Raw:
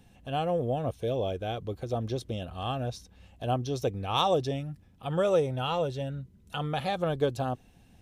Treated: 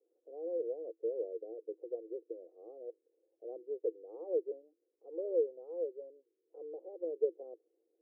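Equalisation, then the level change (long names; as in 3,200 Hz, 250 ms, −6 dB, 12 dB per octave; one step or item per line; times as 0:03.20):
Chebyshev high-pass with heavy ripple 320 Hz, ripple 6 dB
elliptic low-pass filter 510 Hz, stop band 70 dB
−2.0 dB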